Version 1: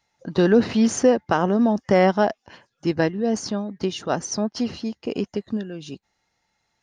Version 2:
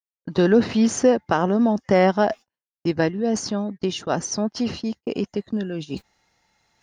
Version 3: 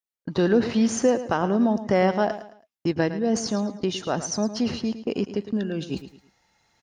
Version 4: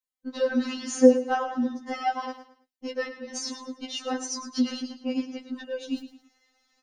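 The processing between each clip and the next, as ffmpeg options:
ffmpeg -i in.wav -af "agate=range=-56dB:threshold=-36dB:ratio=16:detection=peak,areverse,acompressor=mode=upward:threshold=-21dB:ratio=2.5,areverse" out.wav
ffmpeg -i in.wav -filter_complex "[0:a]asplit=2[link_01][link_02];[link_02]alimiter=limit=-16.5dB:level=0:latency=1:release=449,volume=1dB[link_03];[link_01][link_03]amix=inputs=2:normalize=0,aecho=1:1:109|218|327:0.237|0.0783|0.0258,volume=-6.5dB" out.wav
ffmpeg -i in.wav -af "afftfilt=real='re*3.46*eq(mod(b,12),0)':imag='im*3.46*eq(mod(b,12),0)':win_size=2048:overlap=0.75" out.wav

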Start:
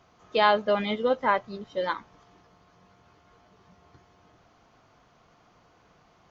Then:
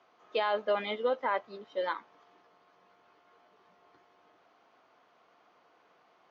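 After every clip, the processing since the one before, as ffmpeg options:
ffmpeg -i in.wav -filter_complex "[0:a]highpass=75,acrossover=split=280 4500:gain=0.0794 1 0.2[link_01][link_02][link_03];[link_01][link_02][link_03]amix=inputs=3:normalize=0,alimiter=limit=-17dB:level=0:latency=1:release=23,volume=-3dB" out.wav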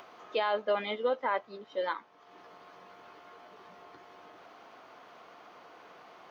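ffmpeg -i in.wav -af "acompressor=mode=upward:threshold=-41dB:ratio=2.5" out.wav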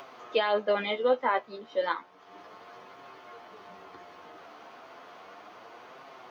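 ffmpeg -i in.wav -af "flanger=delay=7.2:depth=6.3:regen=35:speed=0.33:shape=triangular,volume=8dB" out.wav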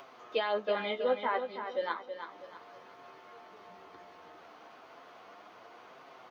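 ffmpeg -i in.wav -af "aecho=1:1:324|648|972|1296:0.376|0.135|0.0487|0.0175,volume=-5dB" out.wav

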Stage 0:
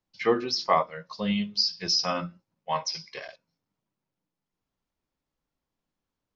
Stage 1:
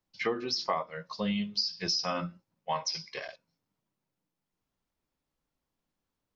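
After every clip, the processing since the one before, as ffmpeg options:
ffmpeg -i in.wav -af "acompressor=threshold=-27dB:ratio=6" out.wav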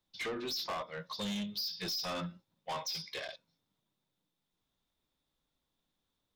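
ffmpeg -i in.wav -af "equalizer=frequency=3600:width_type=o:width=0.24:gain=14.5,asoftclip=type=tanh:threshold=-34dB" out.wav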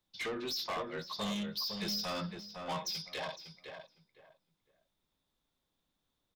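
ffmpeg -i in.wav -filter_complex "[0:a]asplit=2[link_01][link_02];[link_02]adelay=508,lowpass=frequency=1900:poles=1,volume=-5dB,asplit=2[link_03][link_04];[link_04]adelay=508,lowpass=frequency=1900:poles=1,volume=0.24,asplit=2[link_05][link_06];[link_06]adelay=508,lowpass=frequency=1900:poles=1,volume=0.24[link_07];[link_01][link_03][link_05][link_07]amix=inputs=4:normalize=0" out.wav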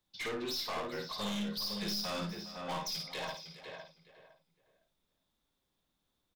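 ffmpeg -i in.wav -af "aeval=exprs='clip(val(0),-1,0.0126)':channel_layout=same,aecho=1:1:53|410:0.531|0.178" out.wav

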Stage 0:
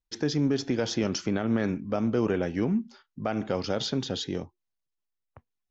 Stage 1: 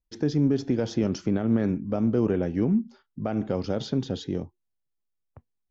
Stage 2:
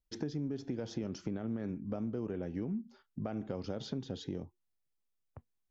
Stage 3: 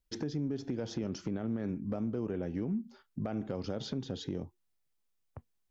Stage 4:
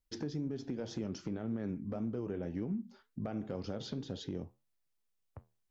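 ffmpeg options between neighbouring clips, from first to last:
ffmpeg -i in.wav -af "tiltshelf=frequency=710:gain=6,volume=-1.5dB" out.wav
ffmpeg -i in.wav -af "acompressor=threshold=-34dB:ratio=4,volume=-2dB" out.wav
ffmpeg -i in.wav -filter_complex "[0:a]asplit=2[link_01][link_02];[link_02]alimiter=level_in=8dB:limit=-24dB:level=0:latency=1:release=109,volume=-8dB,volume=-1.5dB[link_03];[link_01][link_03]amix=inputs=2:normalize=0,volume=24.5dB,asoftclip=hard,volume=-24.5dB,volume=-1.5dB" out.wav
ffmpeg -i in.wav -af "flanger=delay=8.6:depth=5:regen=-75:speed=1.9:shape=triangular,volume=1.5dB" out.wav

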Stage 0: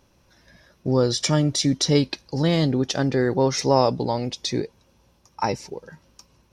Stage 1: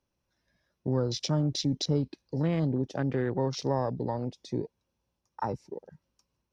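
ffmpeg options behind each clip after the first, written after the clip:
ffmpeg -i in.wav -filter_complex "[0:a]afwtdn=0.0316,acrossover=split=170[link_01][link_02];[link_02]acompressor=threshold=-26dB:ratio=2[link_03];[link_01][link_03]amix=inputs=2:normalize=0,volume=-4.5dB" out.wav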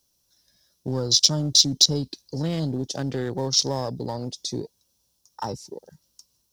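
ffmpeg -i in.wav -filter_complex "[0:a]asplit=2[link_01][link_02];[link_02]asoftclip=type=hard:threshold=-25.5dB,volume=-9dB[link_03];[link_01][link_03]amix=inputs=2:normalize=0,aexciter=amount=8.8:drive=3.2:freq=3400,volume=-1dB" out.wav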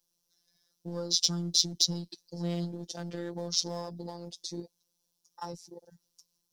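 ffmpeg -i in.wav -af "afftfilt=real='hypot(re,im)*cos(PI*b)':imag='0':win_size=1024:overlap=0.75,volume=-5.5dB" out.wav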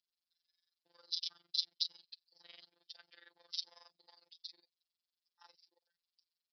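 ffmpeg -i in.wav -af "asuperpass=centerf=3900:order=4:qfactor=0.63,aresample=11025,aresample=44100,tremolo=f=22:d=0.824,volume=-4dB" out.wav

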